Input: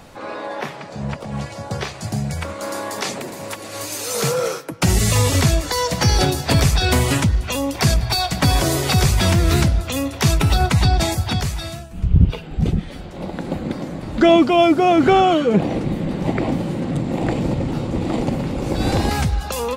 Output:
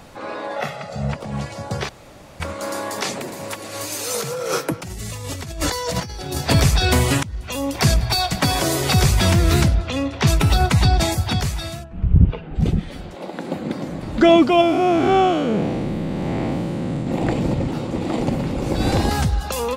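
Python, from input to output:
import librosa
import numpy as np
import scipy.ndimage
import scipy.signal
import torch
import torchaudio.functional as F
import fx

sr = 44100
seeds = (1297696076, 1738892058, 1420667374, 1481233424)

y = fx.comb(x, sr, ms=1.5, depth=0.78, at=(0.56, 1.12))
y = fx.over_compress(y, sr, threshold_db=-27.0, ratio=-1.0, at=(4.14, 6.38))
y = fx.highpass(y, sr, hz=180.0, slope=6, at=(8.36, 8.81))
y = fx.lowpass(y, sr, hz=4500.0, slope=12, at=(9.74, 10.26), fade=0.02)
y = fx.lowpass(y, sr, hz=2100.0, slope=12, at=(11.83, 12.54), fade=0.02)
y = fx.highpass(y, sr, hz=fx.line((13.14, 380.0), (13.81, 110.0)), slope=12, at=(13.14, 13.81), fade=0.02)
y = fx.spec_blur(y, sr, span_ms=174.0, at=(14.61, 17.07))
y = fx.low_shelf(y, sr, hz=110.0, db=-9.0, at=(17.68, 18.21))
y = fx.peak_eq(y, sr, hz=2300.0, db=-6.5, octaves=0.28, at=(19.03, 19.45))
y = fx.edit(y, sr, fx.room_tone_fill(start_s=1.89, length_s=0.51),
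    fx.fade_in_from(start_s=7.23, length_s=0.51, floor_db=-23.5), tone=tone)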